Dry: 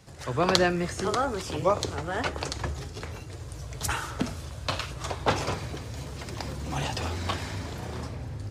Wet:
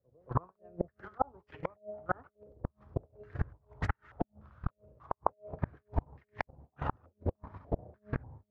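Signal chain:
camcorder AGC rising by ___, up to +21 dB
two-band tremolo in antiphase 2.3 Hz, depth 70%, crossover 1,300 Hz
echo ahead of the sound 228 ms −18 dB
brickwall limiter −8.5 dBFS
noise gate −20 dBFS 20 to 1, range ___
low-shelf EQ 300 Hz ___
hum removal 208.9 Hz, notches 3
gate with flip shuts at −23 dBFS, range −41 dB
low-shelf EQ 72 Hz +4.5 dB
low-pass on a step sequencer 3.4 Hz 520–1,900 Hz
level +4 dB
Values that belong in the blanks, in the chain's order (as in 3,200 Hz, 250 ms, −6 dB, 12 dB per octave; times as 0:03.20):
41 dB per second, −38 dB, +4 dB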